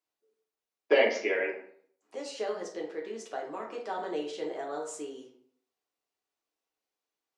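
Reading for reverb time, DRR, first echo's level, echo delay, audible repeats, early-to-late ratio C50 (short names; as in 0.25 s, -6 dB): 0.60 s, -1.5 dB, none, none, none, 6.0 dB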